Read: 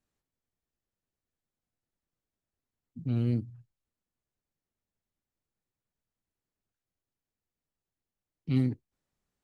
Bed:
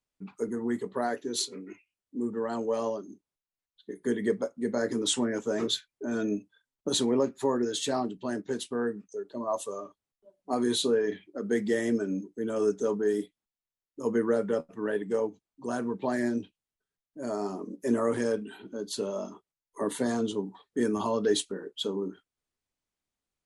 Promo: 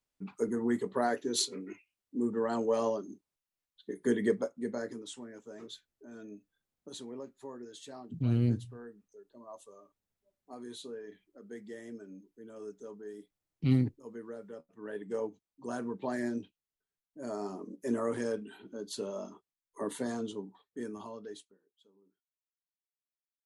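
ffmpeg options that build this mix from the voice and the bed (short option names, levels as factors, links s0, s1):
-filter_complex "[0:a]adelay=5150,volume=1.06[s0];[1:a]volume=4.22,afade=t=out:st=4.18:d=0.88:silence=0.125893,afade=t=in:st=14.68:d=0.59:silence=0.237137,afade=t=out:st=19.83:d=1.76:silence=0.0316228[s1];[s0][s1]amix=inputs=2:normalize=0"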